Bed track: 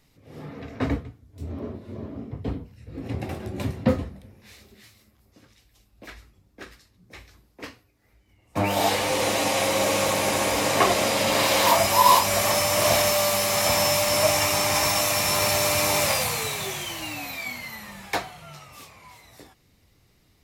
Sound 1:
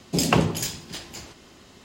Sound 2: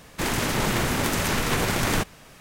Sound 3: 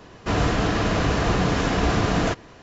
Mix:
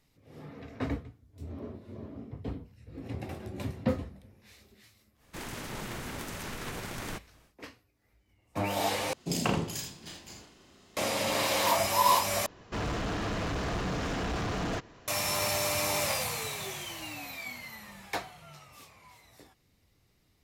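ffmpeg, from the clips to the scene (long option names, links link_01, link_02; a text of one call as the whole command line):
ffmpeg -i bed.wav -i cue0.wav -i cue1.wav -i cue2.wav -filter_complex "[0:a]volume=-7.5dB[link_01];[1:a]aecho=1:1:35|80:0.631|0.473[link_02];[3:a]asoftclip=type=hard:threshold=-21.5dB[link_03];[link_01]asplit=3[link_04][link_05][link_06];[link_04]atrim=end=9.134[link_07];[link_02]atrim=end=1.84,asetpts=PTS-STARTPTS,volume=-10.5dB[link_08];[link_05]atrim=start=10.966:end=12.464[link_09];[link_03]atrim=end=2.62,asetpts=PTS-STARTPTS,volume=-8dB[link_10];[link_06]atrim=start=15.076[link_11];[2:a]atrim=end=2.4,asetpts=PTS-STARTPTS,volume=-15dB,afade=type=in:duration=0.1,afade=type=out:start_time=2.3:duration=0.1,adelay=5150[link_12];[link_07][link_08]acrossfade=duration=0.004:curve1=hsin:curve2=hsin[link_13];[link_13][link_09]acrossfade=duration=0.004:curve1=hsin:curve2=hsin[link_14];[link_14][link_10]acrossfade=duration=0.004:curve1=hsin:curve2=hsin[link_15];[link_15][link_11]acrossfade=duration=0.004:curve1=hsin:curve2=hsin[link_16];[link_16][link_12]amix=inputs=2:normalize=0" out.wav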